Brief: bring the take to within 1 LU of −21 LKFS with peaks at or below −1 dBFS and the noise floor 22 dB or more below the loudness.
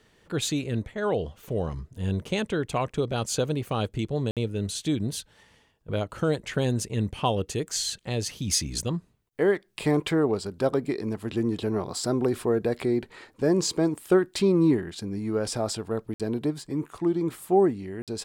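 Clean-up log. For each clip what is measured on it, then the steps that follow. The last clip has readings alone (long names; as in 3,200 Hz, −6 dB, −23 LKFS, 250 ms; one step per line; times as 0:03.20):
number of dropouts 3; longest dropout 57 ms; integrated loudness −27.5 LKFS; sample peak −9.5 dBFS; target loudness −21.0 LKFS
→ repair the gap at 0:04.31/0:16.14/0:18.02, 57 ms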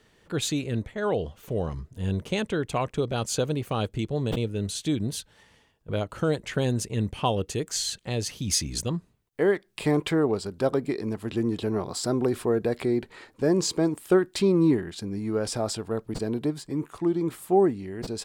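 number of dropouts 0; integrated loudness −27.5 LKFS; sample peak −9.5 dBFS; target loudness −21.0 LKFS
→ level +6.5 dB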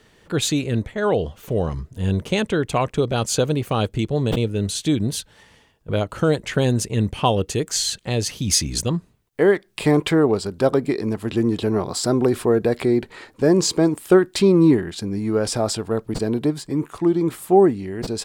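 integrated loudness −21.0 LKFS; sample peak −3.0 dBFS; background noise floor −57 dBFS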